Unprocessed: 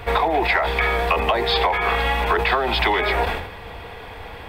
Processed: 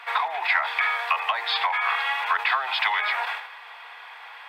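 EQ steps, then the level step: high-pass 960 Hz 24 dB/octave; low-pass 3.1 kHz 6 dB/octave; 0.0 dB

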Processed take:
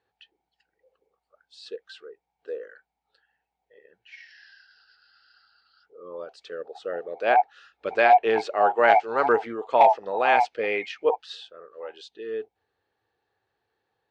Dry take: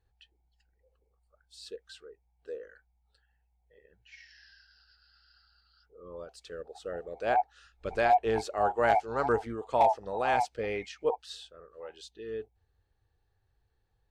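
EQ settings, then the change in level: dynamic bell 2.4 kHz, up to +5 dB, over -48 dBFS, Q 1.5; band-pass 300–3900 Hz; +7.0 dB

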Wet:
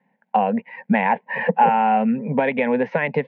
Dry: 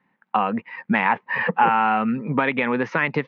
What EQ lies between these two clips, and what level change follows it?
high-pass 240 Hz 6 dB/octave; low-pass 1.8 kHz 12 dB/octave; static phaser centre 330 Hz, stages 6; +7.5 dB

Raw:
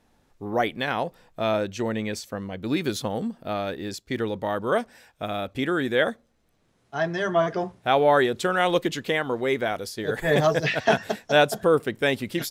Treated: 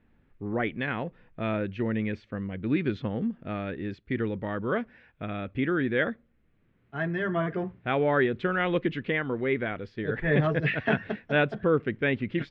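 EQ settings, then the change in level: low-pass 2.4 kHz 24 dB/octave; peaking EQ 780 Hz -13 dB 1.6 oct; +2.5 dB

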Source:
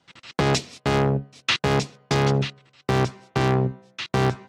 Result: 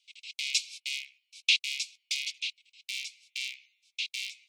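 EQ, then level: Chebyshev high-pass 2.2 kHz, order 8; 0.0 dB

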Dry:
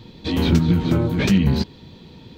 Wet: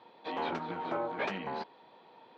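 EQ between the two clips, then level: ladder band-pass 930 Hz, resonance 40%; +7.5 dB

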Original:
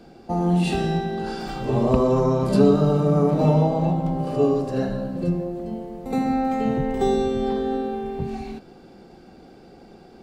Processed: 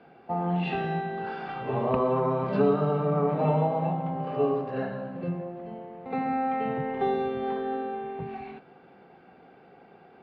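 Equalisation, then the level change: cabinet simulation 130–2700 Hz, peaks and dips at 220 Hz -7 dB, 330 Hz -9 dB, 560 Hz -4 dB; bass shelf 310 Hz -6.5 dB; 0.0 dB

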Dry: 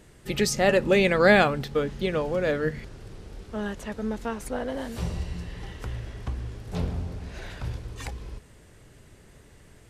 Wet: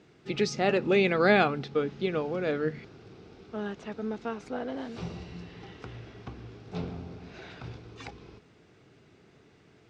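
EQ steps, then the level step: cabinet simulation 170–4900 Hz, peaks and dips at 220 Hz -3 dB, 980 Hz -6 dB, 1.8 kHz -8 dB, 3.1 kHz -5 dB, 4.4 kHz -4 dB; peaking EQ 560 Hz -9 dB 0.28 oct; 0.0 dB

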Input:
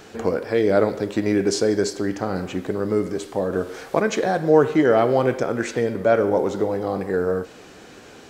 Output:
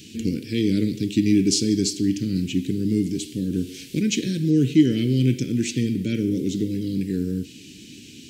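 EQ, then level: high-pass 80 Hz; elliptic band-stop 290–2700 Hz, stop band 80 dB; dynamic bell 130 Hz, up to +5 dB, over -50 dBFS, Q 6.5; +6.0 dB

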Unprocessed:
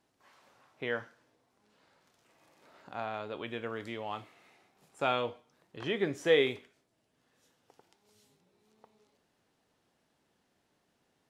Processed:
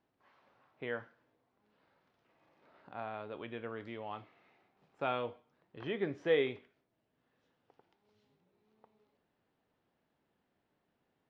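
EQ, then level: distance through air 260 m; -3.5 dB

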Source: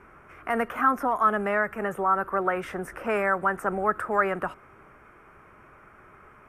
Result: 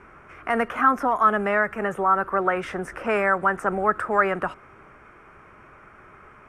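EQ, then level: distance through air 76 m; treble shelf 3.8 kHz +8.5 dB; +3.0 dB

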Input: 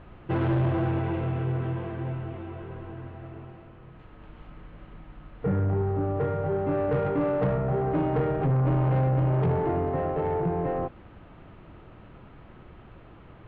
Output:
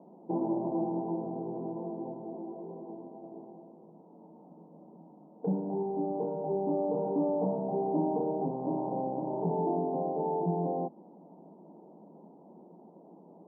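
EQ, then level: Chebyshev band-pass 170–930 Hz, order 5; dynamic bell 490 Hz, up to -5 dB, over -39 dBFS, Q 1.8; 0.0 dB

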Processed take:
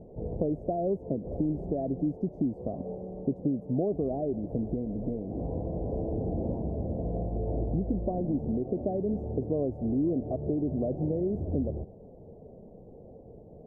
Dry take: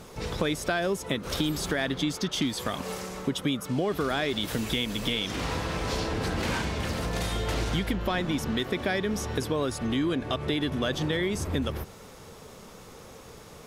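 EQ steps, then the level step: elliptic low-pass 690 Hz, stop band 50 dB; 0.0 dB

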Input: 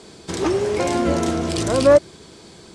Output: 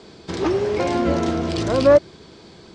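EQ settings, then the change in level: distance through air 120 m; peaking EQ 4.7 kHz +2.5 dB; 0.0 dB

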